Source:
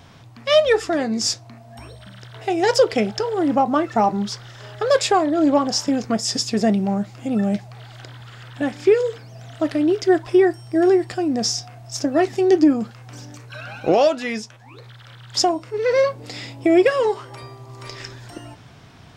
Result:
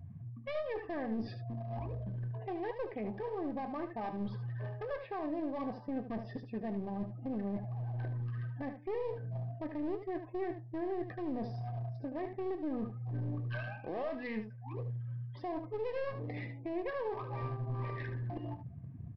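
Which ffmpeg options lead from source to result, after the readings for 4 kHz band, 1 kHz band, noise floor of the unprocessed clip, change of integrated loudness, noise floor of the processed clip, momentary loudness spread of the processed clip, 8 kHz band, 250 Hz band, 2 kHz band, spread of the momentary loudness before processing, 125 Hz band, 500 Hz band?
-32.5 dB, -19.0 dB, -45 dBFS, -20.0 dB, -49 dBFS, 4 LU, under -40 dB, -18.5 dB, -18.5 dB, 21 LU, -4.5 dB, -20.5 dB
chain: -af "afftdn=nr=31:nf=-36,lowpass=f=2.1k:w=0.5412,lowpass=f=2.1k:w=1.3066,areverse,acompressor=threshold=-30dB:ratio=16,areverse,alimiter=level_in=9dB:limit=-24dB:level=0:latency=1:release=407,volume=-9dB,aresample=11025,aeval=exprs='clip(val(0),-1,0.00794)':c=same,aresample=44100,asuperstop=centerf=1400:order=20:qfactor=6.2,aecho=1:1:23|75:0.168|0.335,volume=3.5dB"

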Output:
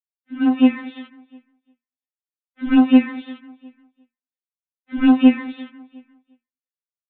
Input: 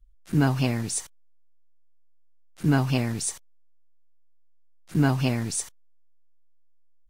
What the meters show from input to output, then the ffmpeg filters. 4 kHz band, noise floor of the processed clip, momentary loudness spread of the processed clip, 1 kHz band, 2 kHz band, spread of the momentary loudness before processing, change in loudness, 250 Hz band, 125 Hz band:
+1.0 dB, under -85 dBFS, 19 LU, +4.0 dB, +3.0 dB, 8 LU, +9.0 dB, +11.5 dB, under -20 dB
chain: -filter_complex "[0:a]highpass=f=130:w=0.5412,highpass=f=130:w=1.3066,dynaudnorm=f=160:g=7:m=11.5dB,asplit=2[a][b];[b]aecho=0:1:354|708|1062:0.0668|0.0301|0.0135[c];[a][c]amix=inputs=2:normalize=0,agate=range=-33dB:threshold=-41dB:ratio=3:detection=peak,aresample=8000,volume=7.5dB,asoftclip=hard,volume=-7.5dB,aresample=44100,lowpass=2.6k,equalizer=f=780:w=0.62:g=-7,afftfilt=real='re*3.46*eq(mod(b,12),0)':imag='im*3.46*eq(mod(b,12),0)':win_size=2048:overlap=0.75,volume=5dB"

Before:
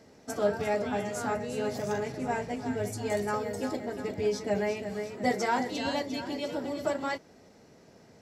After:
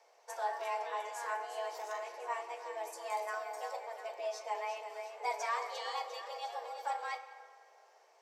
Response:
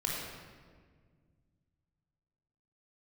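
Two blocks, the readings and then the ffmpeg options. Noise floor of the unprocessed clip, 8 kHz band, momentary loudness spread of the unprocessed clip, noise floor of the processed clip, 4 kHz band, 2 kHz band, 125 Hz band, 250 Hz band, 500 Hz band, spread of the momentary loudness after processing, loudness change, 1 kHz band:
-57 dBFS, -7.5 dB, 5 LU, -65 dBFS, -6.5 dB, -6.0 dB, under -40 dB, under -35 dB, -11.0 dB, 6 LU, -8.0 dB, -2.5 dB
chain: -filter_complex "[0:a]highpass=330,equalizer=f=8.9k:w=1.5:g=-2,afreqshift=230,flanger=delay=8.4:depth=1.2:regen=79:speed=0.45:shape=triangular,asplit=2[a][b];[1:a]atrim=start_sample=2205,asetrate=31311,aresample=44100,adelay=35[c];[b][c]afir=irnorm=-1:irlink=0,volume=-17.5dB[d];[a][d]amix=inputs=2:normalize=0,volume=-3dB"

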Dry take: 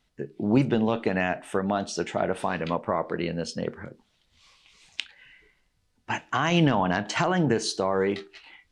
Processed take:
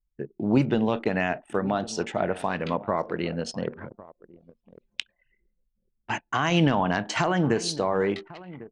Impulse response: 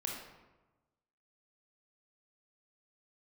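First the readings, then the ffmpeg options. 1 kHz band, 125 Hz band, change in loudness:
0.0 dB, 0.0 dB, 0.0 dB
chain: -filter_complex "[0:a]asplit=2[a][b];[b]adelay=1100,lowpass=f=1.9k:p=1,volume=-17.5dB,asplit=2[c][d];[d]adelay=1100,lowpass=f=1.9k:p=1,volume=0.23[e];[a][c][e]amix=inputs=3:normalize=0,anlmdn=0.398"

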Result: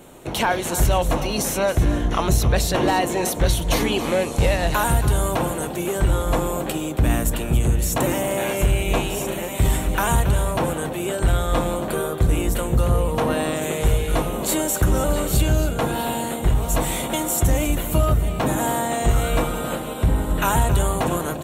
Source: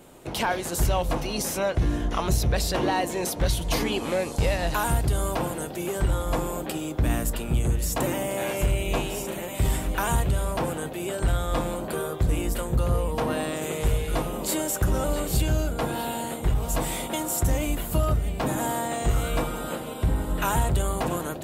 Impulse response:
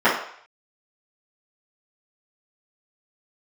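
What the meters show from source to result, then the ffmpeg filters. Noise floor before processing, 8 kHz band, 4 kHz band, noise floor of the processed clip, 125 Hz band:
-35 dBFS, +5.0 dB, +4.5 dB, -29 dBFS, +5.0 dB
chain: -af "bandreject=f=4.9k:w=7.1,aecho=1:1:275:0.224,volume=5dB"

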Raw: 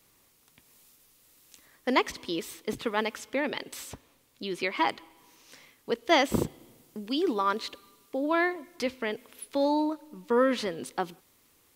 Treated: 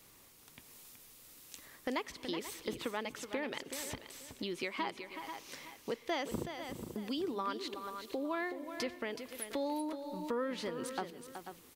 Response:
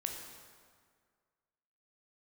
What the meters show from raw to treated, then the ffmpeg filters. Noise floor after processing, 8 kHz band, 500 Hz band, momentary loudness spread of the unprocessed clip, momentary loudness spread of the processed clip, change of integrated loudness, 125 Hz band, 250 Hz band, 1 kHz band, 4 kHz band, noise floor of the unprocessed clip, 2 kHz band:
-60 dBFS, -3.5 dB, -9.5 dB, 15 LU, 16 LU, -10.0 dB, -8.0 dB, -9.0 dB, -10.5 dB, -8.0 dB, -65 dBFS, -10.0 dB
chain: -filter_complex "[0:a]asplit=2[a][b];[b]aecho=0:1:486:0.0841[c];[a][c]amix=inputs=2:normalize=0,acompressor=threshold=-43dB:ratio=3,asplit=2[d][e];[e]aecho=0:1:374:0.355[f];[d][f]amix=inputs=2:normalize=0,volume=3.5dB"

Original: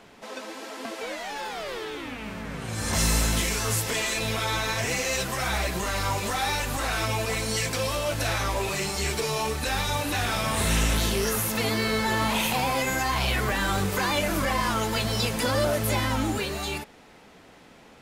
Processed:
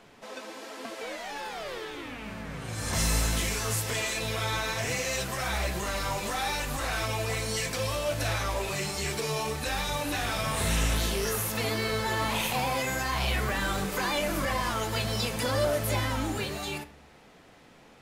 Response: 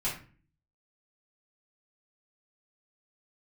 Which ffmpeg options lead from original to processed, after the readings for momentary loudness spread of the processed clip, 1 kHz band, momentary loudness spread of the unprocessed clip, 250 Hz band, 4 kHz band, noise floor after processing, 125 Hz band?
10 LU, -3.5 dB, 10 LU, -5.0 dB, -3.5 dB, -55 dBFS, -3.0 dB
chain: -filter_complex "[0:a]asplit=2[a][b];[1:a]atrim=start_sample=2205,asetrate=33075,aresample=44100[c];[b][c]afir=irnorm=-1:irlink=0,volume=-17dB[d];[a][d]amix=inputs=2:normalize=0,volume=-4.5dB"

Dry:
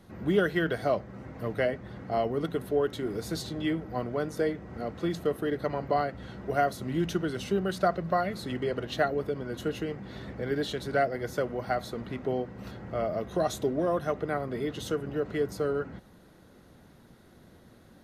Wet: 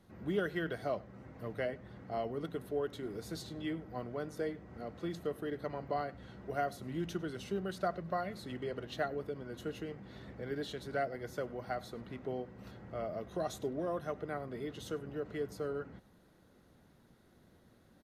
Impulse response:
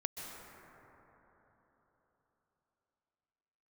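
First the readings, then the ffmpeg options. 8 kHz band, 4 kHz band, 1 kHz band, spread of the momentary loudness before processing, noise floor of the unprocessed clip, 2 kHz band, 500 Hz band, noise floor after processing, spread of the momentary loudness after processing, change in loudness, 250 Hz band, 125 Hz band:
-9.0 dB, -9.0 dB, -9.0 dB, 8 LU, -56 dBFS, -9.0 dB, -9.0 dB, -65 dBFS, 8 LU, -9.0 dB, -9.0 dB, -9.0 dB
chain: -af "aecho=1:1:100:0.0708,volume=-9dB"

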